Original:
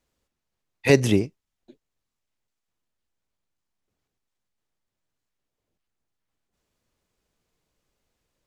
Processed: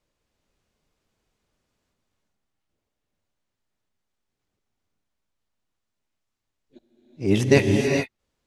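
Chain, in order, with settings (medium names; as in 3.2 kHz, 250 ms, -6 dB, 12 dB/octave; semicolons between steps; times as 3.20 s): reverse the whole clip; treble shelf 11 kHz -10 dB; gated-style reverb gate 460 ms rising, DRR 1.5 dB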